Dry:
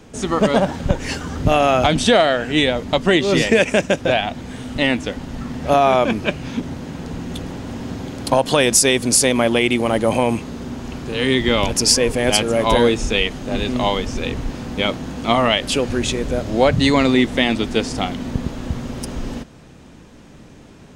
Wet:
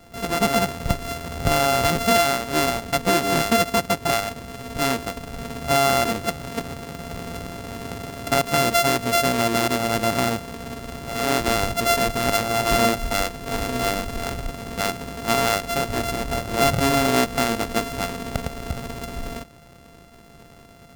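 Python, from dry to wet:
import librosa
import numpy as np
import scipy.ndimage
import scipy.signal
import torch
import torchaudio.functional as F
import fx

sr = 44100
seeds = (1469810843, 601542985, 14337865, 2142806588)

y = np.r_[np.sort(x[:len(x) // 64 * 64].reshape(-1, 64), axis=1).ravel(), x[len(x) // 64 * 64:]]
y = y * 10.0 ** (-4.5 / 20.0)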